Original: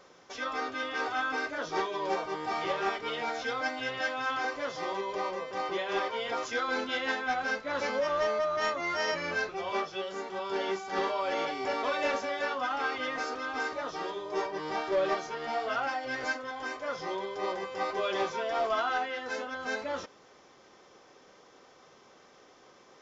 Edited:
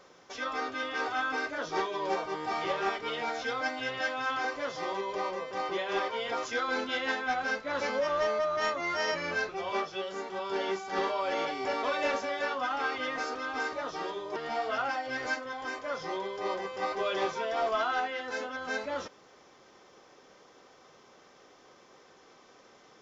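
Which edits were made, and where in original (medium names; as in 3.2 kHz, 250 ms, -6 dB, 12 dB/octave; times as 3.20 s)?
14.36–15.34 s: delete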